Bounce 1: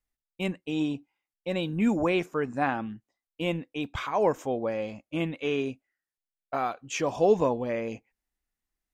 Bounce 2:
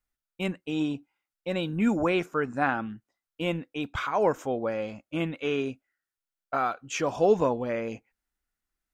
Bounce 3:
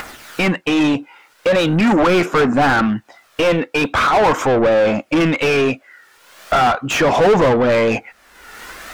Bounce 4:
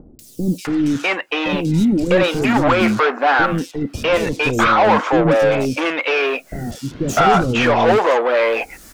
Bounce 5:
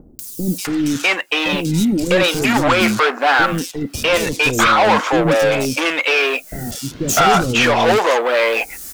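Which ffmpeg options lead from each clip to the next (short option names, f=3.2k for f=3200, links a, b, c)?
-af "equalizer=f=1.4k:t=o:w=0.31:g=8"
-filter_complex "[0:a]aphaser=in_gain=1:out_gain=1:delay=2.3:decay=0.37:speed=0.41:type=triangular,acompressor=mode=upward:threshold=-26dB:ratio=2.5,asplit=2[a][b];[b]highpass=f=720:p=1,volume=34dB,asoftclip=type=tanh:threshold=-7.5dB[c];[a][c]amix=inputs=2:normalize=0,lowpass=f=1.7k:p=1,volume=-6dB,volume=2dB"
-filter_complex "[0:a]acrossover=split=380|4900[a][b][c];[c]adelay=190[d];[b]adelay=650[e];[a][e][d]amix=inputs=3:normalize=0,volume=1dB"
-filter_complex "[0:a]crystalizer=i=4:c=0,asplit=2[a][b];[b]adynamicsmooth=sensitivity=7.5:basefreq=630,volume=-10dB[c];[a][c]amix=inputs=2:normalize=0,volume=-3.5dB"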